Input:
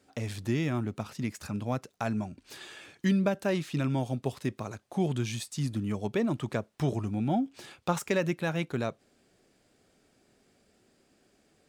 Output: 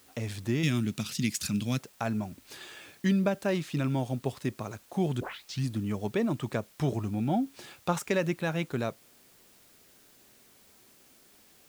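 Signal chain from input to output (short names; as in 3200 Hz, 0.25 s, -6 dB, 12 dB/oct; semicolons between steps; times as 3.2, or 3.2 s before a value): 0.63–1.8 EQ curve 100 Hz 0 dB, 180 Hz +7 dB, 810 Hz -11 dB, 3300 Hz +13 dB; 5.2 tape start 0.45 s; requantised 10-bit, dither triangular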